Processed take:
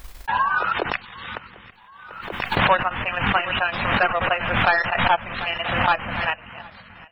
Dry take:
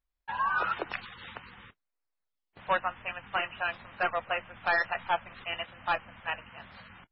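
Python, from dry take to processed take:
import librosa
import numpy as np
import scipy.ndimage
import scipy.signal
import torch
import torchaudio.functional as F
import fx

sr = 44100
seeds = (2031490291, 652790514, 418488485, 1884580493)

y = fx.echo_feedback(x, sr, ms=742, feedback_pct=45, wet_db=-21)
y = fx.transient(y, sr, attack_db=5, sustain_db=-6)
y = fx.pre_swell(y, sr, db_per_s=41.0)
y = y * librosa.db_to_amplitude(5.5)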